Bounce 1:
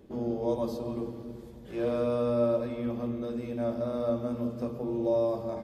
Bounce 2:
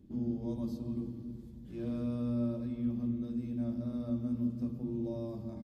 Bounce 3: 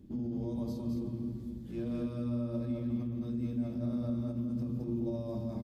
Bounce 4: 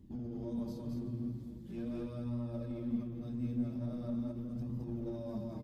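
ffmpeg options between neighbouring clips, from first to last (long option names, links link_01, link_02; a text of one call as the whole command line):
ffmpeg -i in.wav -af "firequalizer=gain_entry='entry(270,0);entry(440,-18);entry(4200,-10)':delay=0.05:min_phase=1" out.wav
ffmpeg -i in.wav -af "alimiter=level_in=8.5dB:limit=-24dB:level=0:latency=1:release=39,volume=-8.5dB,aecho=1:1:215:0.631,volume=3.5dB" out.wav
ffmpeg -i in.wav -filter_complex "[0:a]asplit=2[link_01][link_02];[link_02]aeval=exprs='clip(val(0),-1,0.0126)':channel_layout=same,volume=-6dB[link_03];[link_01][link_03]amix=inputs=2:normalize=0,flanger=delay=1:depth=7:regen=43:speed=0.42:shape=sinusoidal,volume=-2.5dB" out.wav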